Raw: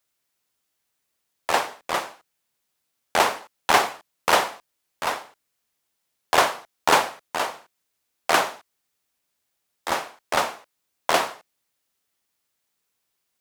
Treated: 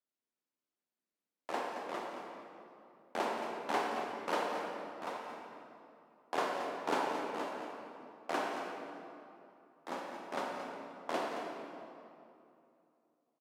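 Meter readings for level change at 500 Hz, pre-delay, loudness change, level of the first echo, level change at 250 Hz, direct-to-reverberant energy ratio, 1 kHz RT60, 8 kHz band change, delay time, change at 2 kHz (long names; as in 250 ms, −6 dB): −10.5 dB, 22 ms, −15.0 dB, −10.0 dB, −5.5 dB, −1.0 dB, 2.7 s, −22.5 dB, 223 ms, −16.5 dB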